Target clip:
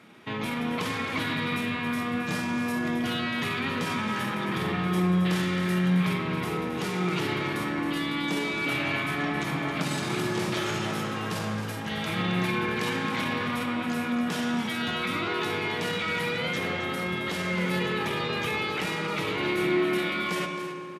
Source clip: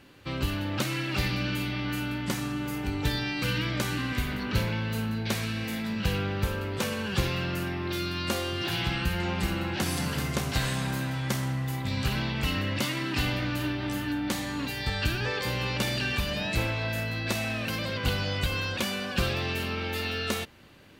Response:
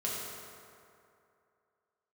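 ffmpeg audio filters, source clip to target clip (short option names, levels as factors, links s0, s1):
-filter_complex "[0:a]highpass=f=180:w=0.5412,highpass=f=180:w=1.3066,alimiter=level_in=1.06:limit=0.0631:level=0:latency=1:release=18,volume=0.944,asetrate=36028,aresample=44100,atempo=1.22405,aecho=1:1:269:0.299,asplit=2[s0][s1];[1:a]atrim=start_sample=2205,asetrate=36603,aresample=44100,lowpass=6100[s2];[s1][s2]afir=irnorm=-1:irlink=0,volume=0.473[s3];[s0][s3]amix=inputs=2:normalize=0"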